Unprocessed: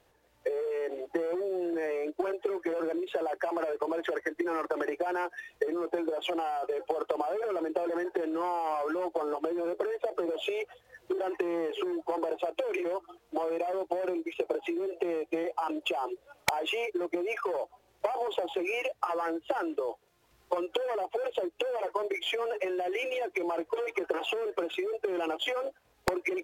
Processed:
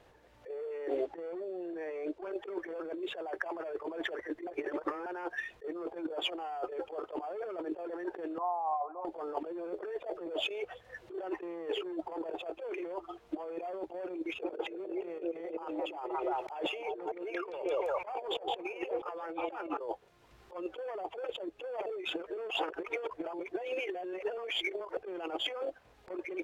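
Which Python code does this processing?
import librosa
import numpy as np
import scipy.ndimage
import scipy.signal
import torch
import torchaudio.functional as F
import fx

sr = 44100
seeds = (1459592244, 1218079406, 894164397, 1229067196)

y = fx.lowpass(x, sr, hz=9800.0, slope=12, at=(0.96, 2.31))
y = fx.formant_cascade(y, sr, vowel='a', at=(8.38, 9.05))
y = fx.echo_stepped(y, sr, ms=172, hz=400.0, octaves=0.7, feedback_pct=70, wet_db=-3, at=(14.43, 19.79), fade=0.02)
y = fx.edit(y, sr, fx.reverse_span(start_s=4.47, length_s=0.59),
    fx.reverse_span(start_s=21.86, length_s=3.11), tone=tone)
y = fx.high_shelf(y, sr, hz=4900.0, db=-8.0)
y = fx.over_compress(y, sr, threshold_db=-36.0, ratio=-0.5)
y = fx.high_shelf(y, sr, hz=11000.0, db=-7.5)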